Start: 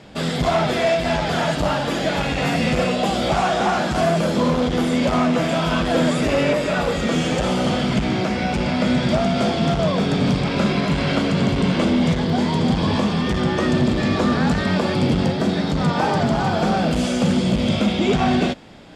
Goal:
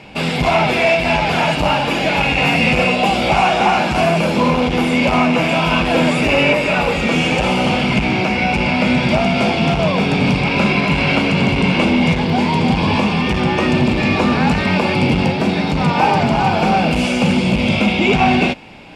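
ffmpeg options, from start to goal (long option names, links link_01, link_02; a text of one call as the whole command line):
ffmpeg -i in.wav -af "superequalizer=9b=1.78:12b=3.16:15b=0.708,volume=3dB" out.wav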